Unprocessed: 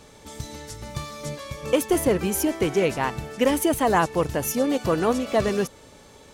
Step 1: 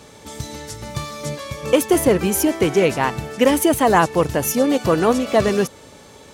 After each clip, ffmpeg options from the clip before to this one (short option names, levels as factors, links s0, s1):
-af "highpass=66,volume=1.88"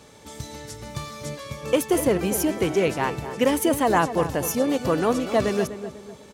-filter_complex "[0:a]asplit=2[s0][s1];[s1]adelay=248,lowpass=f=1500:p=1,volume=0.299,asplit=2[s2][s3];[s3]adelay=248,lowpass=f=1500:p=1,volume=0.42,asplit=2[s4][s5];[s5]adelay=248,lowpass=f=1500:p=1,volume=0.42,asplit=2[s6][s7];[s7]adelay=248,lowpass=f=1500:p=1,volume=0.42[s8];[s0][s2][s4][s6][s8]amix=inputs=5:normalize=0,volume=0.531"